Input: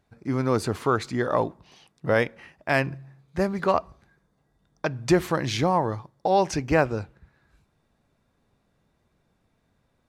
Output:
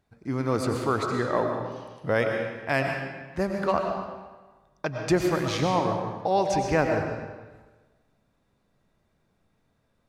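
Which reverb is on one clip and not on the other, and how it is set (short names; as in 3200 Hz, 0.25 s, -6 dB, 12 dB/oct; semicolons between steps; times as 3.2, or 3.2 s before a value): digital reverb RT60 1.3 s, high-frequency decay 0.85×, pre-delay 70 ms, DRR 2.5 dB; gain -3 dB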